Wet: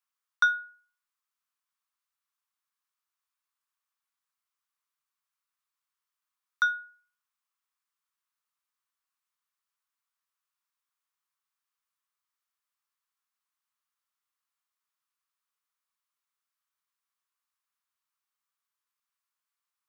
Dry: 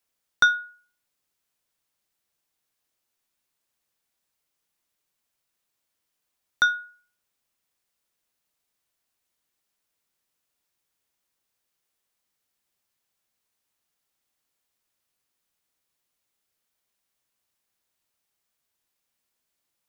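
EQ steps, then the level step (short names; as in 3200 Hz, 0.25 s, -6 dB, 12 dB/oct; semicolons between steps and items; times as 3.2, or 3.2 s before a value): ladder high-pass 1000 Hz, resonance 60%; 0.0 dB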